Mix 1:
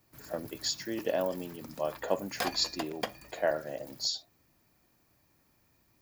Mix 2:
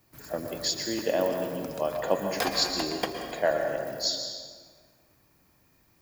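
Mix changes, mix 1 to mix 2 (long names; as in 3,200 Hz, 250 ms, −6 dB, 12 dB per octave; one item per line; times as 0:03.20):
second sound +7.5 dB
reverb: on, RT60 1.7 s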